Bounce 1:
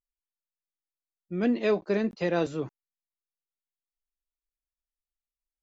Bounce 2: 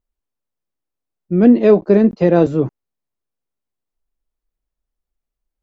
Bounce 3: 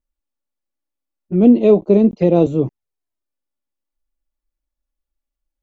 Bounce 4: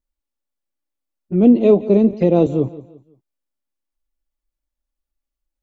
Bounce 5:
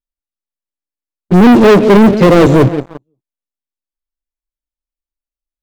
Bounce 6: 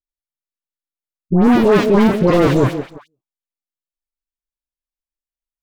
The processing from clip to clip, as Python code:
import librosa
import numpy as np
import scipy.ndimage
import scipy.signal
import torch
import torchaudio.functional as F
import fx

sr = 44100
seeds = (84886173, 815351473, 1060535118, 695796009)

y1 = fx.tilt_shelf(x, sr, db=8.5, hz=1100.0)
y1 = y1 * 10.0 ** (8.5 / 20.0)
y2 = fx.env_flanger(y1, sr, rest_ms=3.5, full_db=-12.0)
y3 = fx.echo_feedback(y2, sr, ms=173, feedback_pct=35, wet_db=-17.5)
y3 = y3 * 10.0 ** (-1.0 / 20.0)
y4 = fx.leveller(y3, sr, passes=5)
y5 = fx.dispersion(y4, sr, late='highs', ms=109.0, hz=1200.0)
y5 = y5 * 10.0 ** (-6.5 / 20.0)